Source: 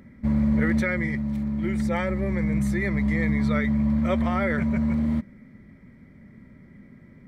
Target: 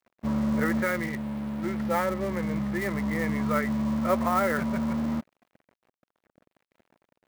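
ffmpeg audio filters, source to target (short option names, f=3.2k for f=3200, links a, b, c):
-af "lowpass=f=1.2k:t=q:w=1.6,aeval=exprs='sgn(val(0))*max(abs(val(0))-0.0075,0)':c=same,aemphasis=mode=production:type=bsi,volume=1.5dB"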